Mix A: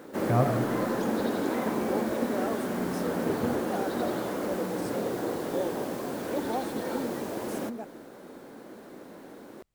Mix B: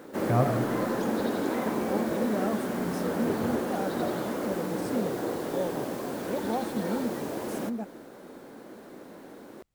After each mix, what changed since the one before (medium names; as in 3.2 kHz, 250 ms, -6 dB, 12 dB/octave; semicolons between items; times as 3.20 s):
second voice: remove high-pass 270 Hz 24 dB/octave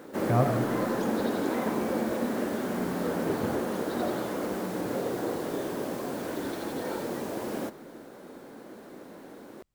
second voice: muted